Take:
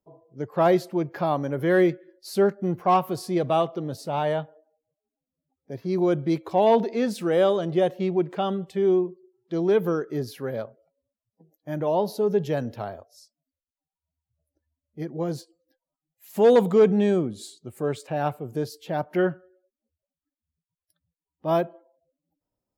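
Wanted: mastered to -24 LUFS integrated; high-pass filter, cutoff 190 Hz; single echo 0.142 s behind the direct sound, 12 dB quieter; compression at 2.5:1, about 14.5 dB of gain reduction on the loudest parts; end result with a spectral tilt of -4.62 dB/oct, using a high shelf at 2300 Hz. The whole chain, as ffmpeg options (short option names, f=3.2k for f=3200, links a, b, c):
-af "highpass=190,highshelf=f=2.3k:g=8.5,acompressor=threshold=-35dB:ratio=2.5,aecho=1:1:142:0.251,volume=11dB"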